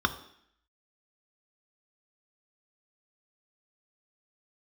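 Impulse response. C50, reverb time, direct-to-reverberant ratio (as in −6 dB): 14.0 dB, 0.65 s, 7.5 dB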